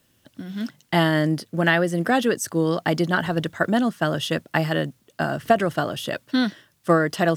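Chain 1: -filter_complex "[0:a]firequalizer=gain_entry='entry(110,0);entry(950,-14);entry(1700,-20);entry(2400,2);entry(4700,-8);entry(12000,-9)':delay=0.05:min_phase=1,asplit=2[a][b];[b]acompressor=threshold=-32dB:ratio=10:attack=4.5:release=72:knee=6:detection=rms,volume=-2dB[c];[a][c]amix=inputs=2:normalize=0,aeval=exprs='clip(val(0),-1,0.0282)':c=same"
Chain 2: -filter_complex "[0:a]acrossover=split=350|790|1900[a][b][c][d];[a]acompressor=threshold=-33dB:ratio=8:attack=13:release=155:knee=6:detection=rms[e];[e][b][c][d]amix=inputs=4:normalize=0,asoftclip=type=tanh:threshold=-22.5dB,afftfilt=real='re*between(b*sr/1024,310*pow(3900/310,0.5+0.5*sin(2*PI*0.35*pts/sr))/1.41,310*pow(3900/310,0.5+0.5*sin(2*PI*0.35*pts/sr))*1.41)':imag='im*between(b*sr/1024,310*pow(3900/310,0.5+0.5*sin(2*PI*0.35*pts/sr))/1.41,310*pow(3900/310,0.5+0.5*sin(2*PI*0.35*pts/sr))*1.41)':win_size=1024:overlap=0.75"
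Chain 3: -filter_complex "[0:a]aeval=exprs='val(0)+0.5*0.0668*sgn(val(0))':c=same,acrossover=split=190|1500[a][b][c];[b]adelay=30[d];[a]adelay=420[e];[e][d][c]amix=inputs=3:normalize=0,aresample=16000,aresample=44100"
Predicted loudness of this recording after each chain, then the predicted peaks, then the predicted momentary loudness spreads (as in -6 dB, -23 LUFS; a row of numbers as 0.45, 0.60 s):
-29.5, -36.0, -22.0 LUFS; -11.5, -20.0, -4.5 dBFS; 6, 11, 6 LU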